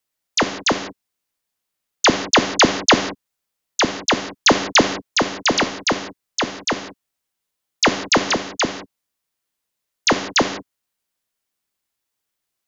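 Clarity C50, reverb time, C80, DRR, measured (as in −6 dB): 10.0 dB, non-exponential decay, 12.5 dB, 7.5 dB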